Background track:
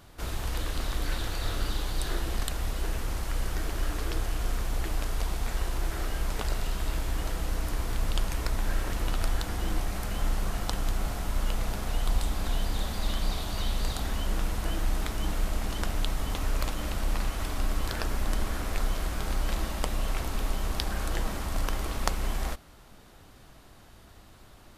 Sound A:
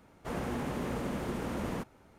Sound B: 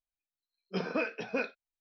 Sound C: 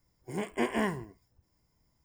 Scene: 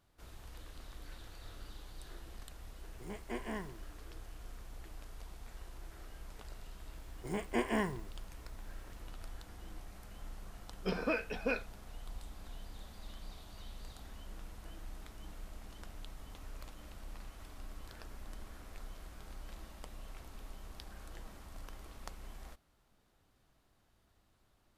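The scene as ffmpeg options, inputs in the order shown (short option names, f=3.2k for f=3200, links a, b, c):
-filter_complex "[3:a]asplit=2[a][b];[0:a]volume=-19.5dB[c];[a]atrim=end=2.04,asetpts=PTS-STARTPTS,volume=-11.5dB,afade=t=in:d=0.004:c=hsin,afade=t=out:st=2.036:d=0.004:c=hsin,adelay=2720[d];[b]atrim=end=2.04,asetpts=PTS-STARTPTS,volume=-3.5dB,afade=t=in:d=0.004:c=hsin,afade=t=out:st=2.036:d=0.004:c=hsin,adelay=6960[e];[2:a]atrim=end=1.8,asetpts=PTS-STARTPTS,volume=-2dB,afade=t=in:d=0.004:c=hsin,afade=t=out:st=1.796:d=0.004:c=hsin,adelay=10120[f];[c][d][e][f]amix=inputs=4:normalize=0"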